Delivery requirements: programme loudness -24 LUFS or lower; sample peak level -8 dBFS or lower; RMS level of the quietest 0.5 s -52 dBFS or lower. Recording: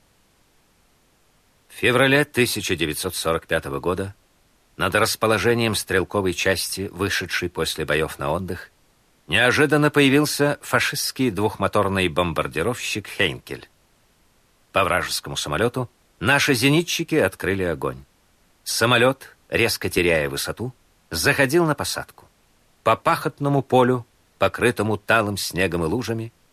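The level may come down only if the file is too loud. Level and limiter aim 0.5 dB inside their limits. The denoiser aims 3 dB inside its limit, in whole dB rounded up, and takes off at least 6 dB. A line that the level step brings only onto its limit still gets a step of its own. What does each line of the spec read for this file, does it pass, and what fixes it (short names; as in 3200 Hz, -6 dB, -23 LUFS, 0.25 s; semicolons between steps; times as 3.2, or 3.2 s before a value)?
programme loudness -21.0 LUFS: fail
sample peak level -5.5 dBFS: fail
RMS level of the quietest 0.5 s -60 dBFS: OK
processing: gain -3.5 dB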